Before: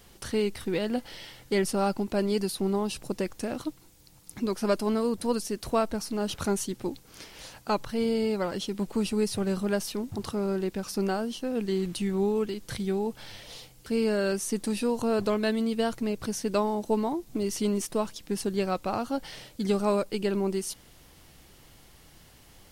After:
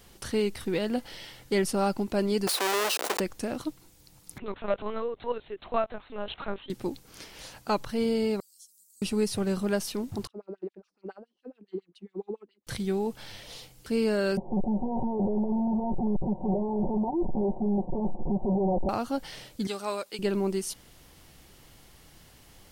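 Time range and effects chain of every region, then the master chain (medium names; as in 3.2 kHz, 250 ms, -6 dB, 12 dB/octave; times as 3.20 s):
2.47–3.20 s: square wave that keeps the level + high-pass 420 Hz 24 dB/octave + level flattener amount 70%
4.38–6.70 s: high-pass 460 Hz + LPC vocoder at 8 kHz pitch kept
8.40–9.02 s: inverse Chebyshev high-pass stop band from 2.1 kHz, stop band 60 dB + compression 1.5:1, threshold -57 dBFS
10.27–12.67 s: LFO band-pass sine 7.2 Hz 280–3600 Hz + upward expansion 2.5:1, over -45 dBFS
14.37–18.89 s: one-bit comparator + steep low-pass 920 Hz 96 dB/octave + comb 5.4 ms, depth 77%
19.67–20.19 s: high-pass 1.1 kHz 6 dB/octave + peaking EQ 3.7 kHz +3 dB 0.31 oct
whole clip: none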